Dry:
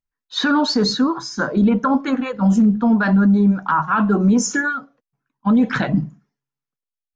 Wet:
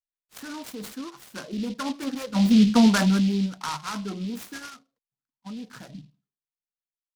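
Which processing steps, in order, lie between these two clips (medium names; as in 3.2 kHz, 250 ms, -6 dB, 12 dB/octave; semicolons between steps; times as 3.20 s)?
Doppler pass-by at 2.74 s, 9 m/s, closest 1.9 m; delay time shaken by noise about 3.5 kHz, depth 0.077 ms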